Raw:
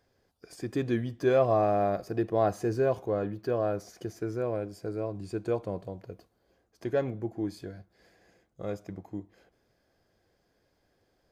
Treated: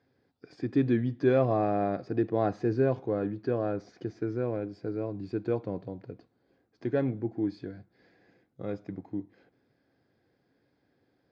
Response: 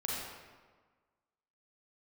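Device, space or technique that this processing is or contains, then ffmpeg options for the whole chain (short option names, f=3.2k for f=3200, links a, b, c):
guitar cabinet: -af "highpass=100,equalizer=f=130:t=q:w=4:g=6,equalizer=f=270:t=q:w=4:g=8,equalizer=f=630:t=q:w=4:g=-5,equalizer=f=1.1k:t=q:w=4:g=-4,equalizer=f=3k:t=q:w=4:g=-6,lowpass=f=4.3k:w=0.5412,lowpass=f=4.3k:w=1.3066"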